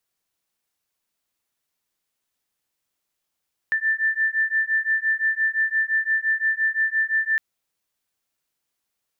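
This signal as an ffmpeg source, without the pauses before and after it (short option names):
-f lavfi -i "aevalsrc='0.075*(sin(2*PI*1770*t)+sin(2*PI*1775.8*t))':d=3.66:s=44100"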